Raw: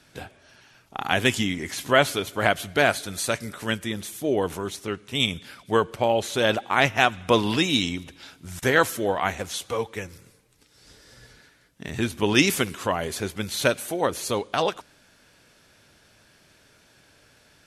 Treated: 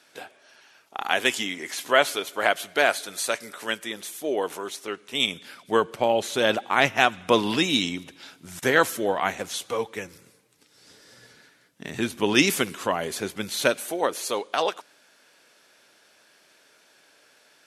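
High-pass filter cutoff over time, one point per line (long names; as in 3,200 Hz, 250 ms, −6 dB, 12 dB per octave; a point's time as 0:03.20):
0:04.81 390 Hz
0:05.97 170 Hz
0:13.47 170 Hz
0:14.23 370 Hz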